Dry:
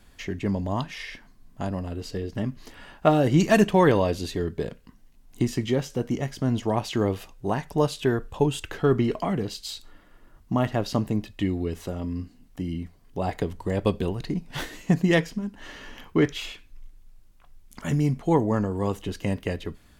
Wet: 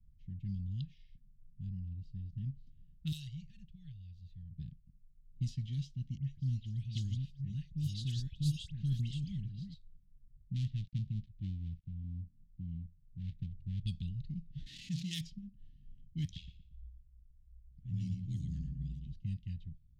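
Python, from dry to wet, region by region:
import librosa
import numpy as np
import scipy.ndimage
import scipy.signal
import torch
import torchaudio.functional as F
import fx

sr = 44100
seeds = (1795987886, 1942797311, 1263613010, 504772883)

y = fx.chain(x, sr, fx.tone_stack(knobs='10-0-10'),
    fx.transient(attack_db=-8, sustain_db=-4),
    fx.band_squash(depth_pct=100), at=(3.12, 4.51))
y = fx.chain(y, sr, fx.reverse_delay(ms=663, wet_db=-4),
    fx.dispersion(late='highs', ms=85.0, hz=2100.0), at=(6.17, 9.74))
y = fx.chain(y, sr, fx.dead_time(dead_ms=0.26),
    fx.lowpass(hz=2200.0, slope=6), at=(10.54, 13.87))
y = fx.chain(y, sr, fx.zero_step(step_db=-29.0),
    fx.highpass(hz=480.0, slope=6),
    fx.env_flatten(amount_pct=50), at=(14.66, 15.21))
y = fx.chain(y, sr, fx.ring_mod(carrier_hz=41.0),
    fx.echo_feedback(ms=117, feedback_pct=43, wet_db=-5.0), at=(16.24, 19.13))
y = fx.env_lowpass(y, sr, base_hz=470.0, full_db=-16.0)
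y = scipy.signal.sosfilt(scipy.signal.ellip(3, 1.0, 60, [150.0, 3600.0], 'bandstop', fs=sr, output='sos'), y)
y = F.gain(torch.from_numpy(y), -6.0).numpy()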